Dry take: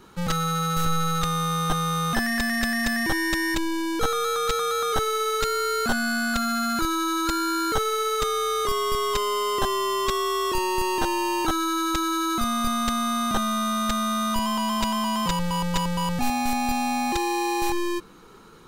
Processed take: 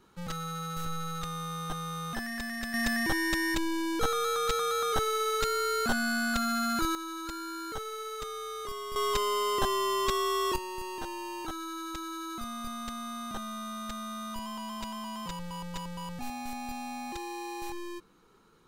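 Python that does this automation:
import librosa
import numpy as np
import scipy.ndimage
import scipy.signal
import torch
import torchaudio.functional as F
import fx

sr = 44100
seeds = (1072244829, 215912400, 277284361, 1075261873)

y = fx.gain(x, sr, db=fx.steps((0.0, -11.5), (2.74, -4.5), (6.95, -13.5), (8.96, -4.0), (10.56, -13.5)))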